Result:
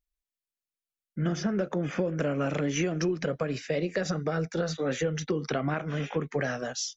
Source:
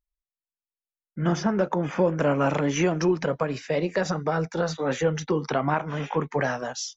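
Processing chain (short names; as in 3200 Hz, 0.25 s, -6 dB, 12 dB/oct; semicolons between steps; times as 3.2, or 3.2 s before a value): bell 930 Hz -13.5 dB 0.52 oct; compressor, threshold -24 dBFS, peak gain reduction 7 dB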